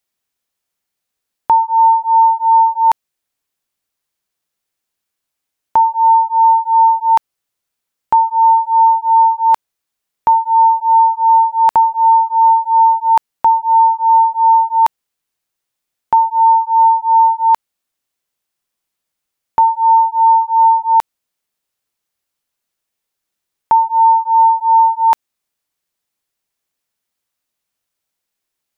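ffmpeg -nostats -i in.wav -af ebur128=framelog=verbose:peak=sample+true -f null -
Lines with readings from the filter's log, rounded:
Integrated loudness:
  I:         -11.8 LUFS
  Threshold: -21.8 LUFS
Loudness range:
  LRA:         6.9 LU
  Threshold: -33.9 LUFS
  LRA low:   -18.3 LUFS
  LRA high:  -11.4 LUFS
Sample peak:
  Peak:       -4.6 dBFS
True peak:
  Peak:       -4.0 dBFS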